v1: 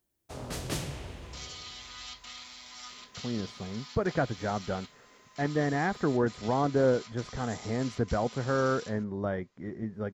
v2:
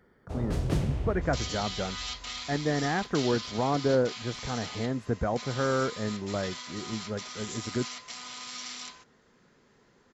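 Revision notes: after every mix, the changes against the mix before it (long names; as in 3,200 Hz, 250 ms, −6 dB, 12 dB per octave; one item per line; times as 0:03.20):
speech: entry −2.90 s
first sound: add spectral tilt −3 dB per octave
second sound +7.0 dB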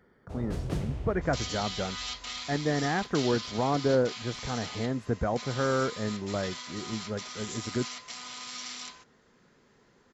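first sound −4.5 dB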